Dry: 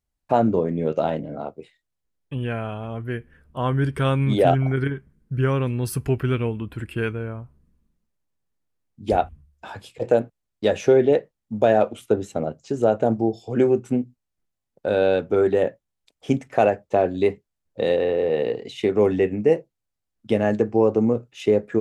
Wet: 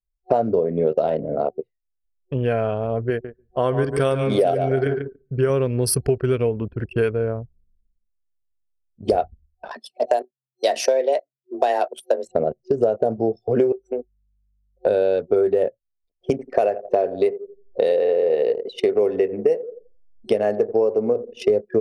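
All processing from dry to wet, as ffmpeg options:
ffmpeg -i in.wav -filter_complex "[0:a]asettb=1/sr,asplit=3[link_01][link_02][link_03];[link_01]atrim=end=3.104[link_04];[link_02]atrim=start=3.1:end=5.5,asetpts=PTS-STARTPTS,afade=type=in:duration=0.004:curve=qsin,afade=type=out:start_time=2.396:duration=0.004:curve=qsin,lowshelf=frequency=180:gain=-6.5,aecho=1:1:143|286|429:0.355|0.0993|0.0278,atrim=end_sample=105840[link_05];[link_03]atrim=start=5.496[link_06];[link_04][link_05]acrossfade=duration=0.004:curve1=hsin:curve2=qsin[link_07];[link_07][link_06]acrossfade=duration=0.004:curve1=qsin:curve2=hsin,asettb=1/sr,asplit=3[link_08][link_09][link_10];[link_08]atrim=end=9.714[link_11];[link_09]atrim=start=9.71:end=12.28,asetpts=PTS-STARTPTS,afade=type=in:duration=0.004:curve=qsin,afade=type=out:start_time=2.566:duration=0.004:curve=qsin,tiltshelf=frequency=1100:gain=-6.5,afreqshift=130[link_12];[link_10]atrim=start=12.276[link_13];[link_11][link_12]acrossfade=duration=0.004:curve1=hsin:curve2=qsin[link_14];[link_14][link_13]acrossfade=duration=0.004:curve1=qsin:curve2=hsin,asettb=1/sr,asplit=3[link_15][link_16][link_17];[link_15]atrim=end=13.724[link_18];[link_16]atrim=start=13.72:end=14.86,asetpts=PTS-STARTPTS,afade=type=in:duration=0.004:curve=qsin,afade=type=out:start_time=1.136:duration=0.004:curve=qsin,highpass=frequency=410:width=0.5412,highpass=frequency=410:width=1.3066,acompressor=threshold=-29dB:ratio=6:attack=3.2:release=140:knee=1:detection=peak,aeval=exprs='val(0)+0.000891*(sin(2*PI*50*n/s)+sin(2*PI*2*50*n/s)/2+sin(2*PI*3*50*n/s)/3+sin(2*PI*4*50*n/s)/4+sin(2*PI*5*50*n/s)/5)':channel_layout=same[link_19];[link_17]atrim=start=14.856[link_20];[link_18][link_19]acrossfade=duration=0.004:curve1=hsin:curve2=qsin[link_21];[link_21][link_20]acrossfade=duration=0.004:curve1=qsin:curve2=hsin,asettb=1/sr,asplit=3[link_22][link_23][link_24];[link_22]atrim=end=16.304[link_25];[link_23]atrim=start=16.3:end=21.5,asetpts=PTS-STARTPTS,afade=type=in:duration=0.004:curve=qsin,afade=type=out:start_time=5.196:duration=0.004:curve=qsin,equalizer=frequency=85:width=0.42:gain=-9.5,acompressor=mode=upward:threshold=-35dB:ratio=2.5:attack=3.2:release=140:knee=2.83:detection=peak,asplit=2[link_26][link_27];[link_27]adelay=86,lowpass=frequency=1400:poles=1,volume=-15dB,asplit=2[link_28][link_29];[link_29]adelay=86,lowpass=frequency=1400:poles=1,volume=0.53,asplit=2[link_30][link_31];[link_31]adelay=86,lowpass=frequency=1400:poles=1,volume=0.53,asplit=2[link_32][link_33];[link_33]adelay=86,lowpass=frequency=1400:poles=1,volume=0.53,asplit=2[link_34][link_35];[link_35]adelay=86,lowpass=frequency=1400:poles=1,volume=0.53[link_36];[link_26][link_28][link_30][link_32][link_34][link_36]amix=inputs=6:normalize=0,atrim=end_sample=229320[link_37];[link_24]atrim=start=21.496[link_38];[link_25][link_37]acrossfade=duration=0.004:curve1=hsin:curve2=qsin[link_39];[link_39][link_38]acrossfade=duration=0.004:curve1=qsin:curve2=hsin,anlmdn=6.31,superequalizer=7b=2.82:8b=2.51:14b=3.55:16b=3.55,acompressor=threshold=-20dB:ratio=6,volume=4dB" out.wav

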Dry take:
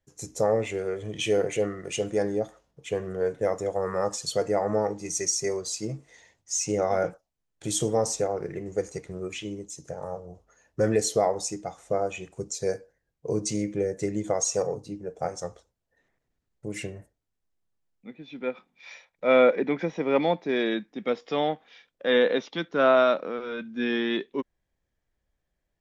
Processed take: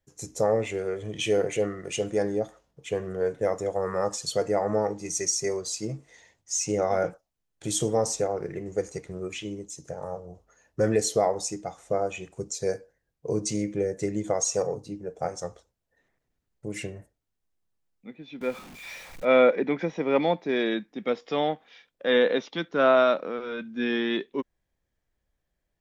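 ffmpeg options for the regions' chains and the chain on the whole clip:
ffmpeg -i in.wav -filter_complex "[0:a]asettb=1/sr,asplit=3[link_01][link_02][link_03];[link_01]atrim=end=18.414[link_04];[link_02]atrim=start=18.41:end=19.25,asetpts=PTS-STARTPTS,afade=type=in:duration=0.004:curve=qsin,afade=type=out:start_time=0.836:duration=0.004:curve=qsin,aeval=exprs='val(0)+0.5*0.00891*sgn(val(0))':channel_layout=same,lowshelf=frequency=78:gain=9[link_05];[link_03]atrim=start=19.246[link_06];[link_04][link_05]acrossfade=duration=0.004:curve1=hsin:curve2=qsin[link_07];[link_07][link_06]acrossfade=duration=0.004:curve1=qsin:curve2=hsin" out.wav

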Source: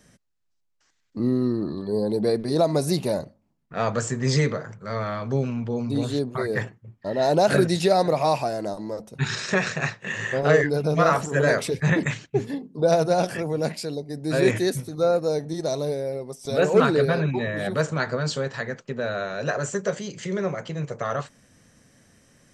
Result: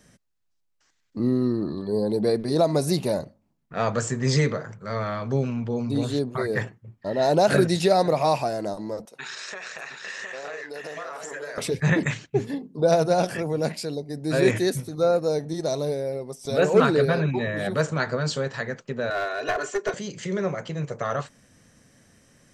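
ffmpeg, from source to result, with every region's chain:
ffmpeg -i in.wav -filter_complex "[0:a]asettb=1/sr,asplit=3[link_01][link_02][link_03];[link_01]atrim=end=9.054[link_04];[link_02]atrim=start=9.05:end=11.58,asetpts=PTS-STARTPTS,afade=type=in:duration=0.004:curve=qsin,afade=type=out:start_time=2.526:duration=0.004:curve=qsin,highpass=550,acompressor=threshold=-32dB:ratio=12:attack=3.2:release=140:knee=1:detection=peak,aecho=1:1:712:0.531,atrim=end_sample=111573[link_05];[link_03]atrim=start=11.576[link_06];[link_04][link_05]acrossfade=duration=0.004:curve1=hsin:curve2=qsin[link_07];[link_07][link_06]acrossfade=duration=0.004:curve1=qsin:curve2=hsin,asettb=1/sr,asplit=3[link_08][link_09][link_10];[link_08]atrim=end=19.104[link_11];[link_09]atrim=start=19.1:end=19.94,asetpts=PTS-STARTPTS,afade=type=in:duration=0.004:curve=qsin,afade=type=out:start_time=0.836:duration=0.004:curve=qsin,acrossover=split=300 5500:gain=0.0891 1 0.224[link_12][link_13][link_14];[link_12][link_13][link_14]amix=inputs=3:normalize=0,aecho=1:1:2.8:0.92,atrim=end_sample=37044,aeval=exprs='clip(val(0),-1,0.075)':channel_layout=same[link_15];[link_10]atrim=start=19.936[link_16];[link_11][link_15]acrossfade=duration=0.004:curve1=hsin:curve2=qsin[link_17];[link_17][link_16]acrossfade=duration=0.004:curve1=qsin:curve2=hsin" out.wav

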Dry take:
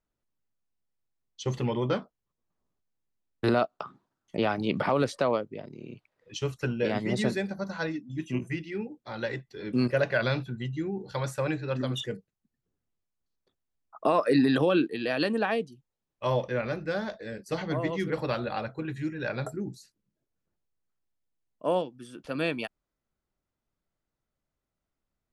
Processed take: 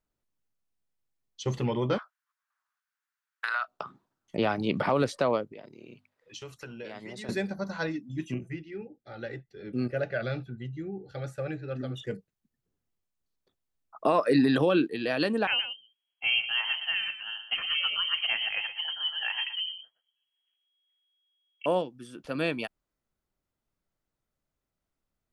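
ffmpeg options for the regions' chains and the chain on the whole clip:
ffmpeg -i in.wav -filter_complex "[0:a]asettb=1/sr,asplit=3[link_01][link_02][link_03];[link_01]atrim=end=1.984[link_04];[link_02]atrim=start=1.98:end=3.68,asetpts=PTS-STARTPTS,afade=type=in:duration=0.004:curve=qsin,afade=type=out:start_time=1.696:duration=0.004:curve=qsin,highpass=frequency=960:width=0.5412,highpass=frequency=960:width=1.3066,equalizer=frequency=1500:width_type=o:width=0.86:gain=14.5,acompressor=threshold=-25dB:ratio=10:attack=3.2:release=140:knee=1:detection=peak[link_05];[link_03]atrim=start=3.676[link_06];[link_04][link_05]acrossfade=duration=0.004:curve1=hsin:curve2=qsin[link_07];[link_07][link_06]acrossfade=duration=0.004:curve1=qsin:curve2=hsin,asettb=1/sr,asplit=3[link_08][link_09][link_10];[link_08]atrim=end=5.524[link_11];[link_09]atrim=start=5.52:end=7.29,asetpts=PTS-STARTPTS,afade=type=in:duration=0.004:curve=qsin,afade=type=out:start_time=1.766:duration=0.004:curve=qsin,lowshelf=frequency=350:gain=-9.5,acompressor=threshold=-40dB:ratio=3:attack=3.2:release=140:knee=1:detection=peak,bandreject=frequency=50:width_type=h:width=6,bandreject=frequency=100:width_type=h:width=6,bandreject=frequency=150:width_type=h:width=6,bandreject=frequency=200:width_type=h:width=6,bandreject=frequency=250:width_type=h:width=6[link_12];[link_10]atrim=start=7.286[link_13];[link_11][link_12]acrossfade=duration=0.004:curve1=hsin:curve2=qsin[link_14];[link_14][link_13]acrossfade=duration=0.004:curve1=qsin:curve2=hsin,asettb=1/sr,asplit=3[link_15][link_16][link_17];[link_15]atrim=end=8.344[link_18];[link_16]atrim=start=8.34:end=12.07,asetpts=PTS-STARTPTS,afade=type=in:duration=0.004:curve=qsin,afade=type=out:start_time=3.726:duration=0.004:curve=qsin,highshelf=frequency=2800:gain=-9,flanger=delay=1.6:depth=1.2:regen=-73:speed=1.6:shape=triangular,asuperstop=centerf=1000:order=12:qfactor=3.5[link_19];[link_17]atrim=start=12.066[link_20];[link_18][link_19]acrossfade=duration=0.004:curve1=hsin:curve2=qsin[link_21];[link_21][link_20]acrossfade=duration=0.004:curve1=qsin:curve2=hsin,asettb=1/sr,asplit=3[link_22][link_23][link_24];[link_22]atrim=end=15.474[link_25];[link_23]atrim=start=15.47:end=21.66,asetpts=PTS-STARTPTS,afade=type=in:duration=0.004:curve=qsin,afade=type=out:start_time=6.186:duration=0.004:curve=qsin,aecho=1:1:120:0.299,atrim=end_sample=272979,lowpass=frequency=2800:width_type=q:width=0.5098,lowpass=frequency=2800:width_type=q:width=0.6013,lowpass=frequency=2800:width_type=q:width=0.9,lowpass=frequency=2800:width_type=q:width=2.563,afreqshift=-3300[link_26];[link_24]atrim=start=21.656[link_27];[link_25][link_26]acrossfade=duration=0.004:curve1=hsin:curve2=qsin[link_28];[link_28][link_27]acrossfade=duration=0.004:curve1=qsin:curve2=hsin" out.wav

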